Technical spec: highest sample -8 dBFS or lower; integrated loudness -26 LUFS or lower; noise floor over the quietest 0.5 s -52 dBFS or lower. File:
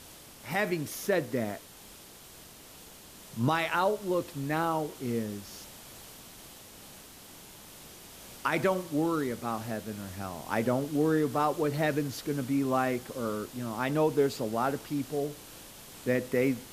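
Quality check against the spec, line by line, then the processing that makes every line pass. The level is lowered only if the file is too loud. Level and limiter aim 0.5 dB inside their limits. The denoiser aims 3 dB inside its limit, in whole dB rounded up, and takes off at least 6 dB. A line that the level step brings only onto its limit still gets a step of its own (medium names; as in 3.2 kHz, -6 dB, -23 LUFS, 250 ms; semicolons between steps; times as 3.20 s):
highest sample -13.0 dBFS: pass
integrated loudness -30.5 LUFS: pass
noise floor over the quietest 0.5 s -51 dBFS: fail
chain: noise reduction 6 dB, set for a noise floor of -51 dBFS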